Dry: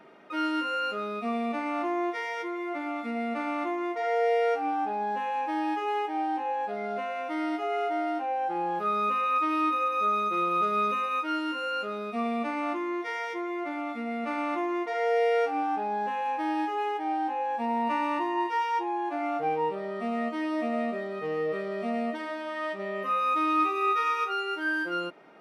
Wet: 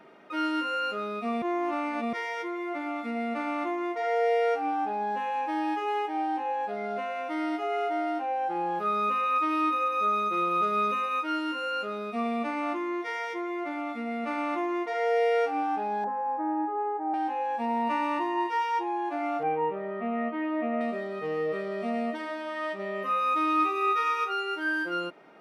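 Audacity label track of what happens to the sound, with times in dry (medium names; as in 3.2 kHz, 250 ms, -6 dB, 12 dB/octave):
1.420000	2.130000	reverse
16.040000	17.140000	low-pass 1.3 kHz 24 dB/octave
19.430000	20.810000	low-pass 2.6 kHz 24 dB/octave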